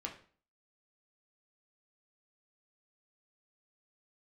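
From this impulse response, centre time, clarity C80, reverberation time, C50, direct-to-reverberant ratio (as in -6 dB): 18 ms, 14.5 dB, 0.45 s, 10.0 dB, -0.5 dB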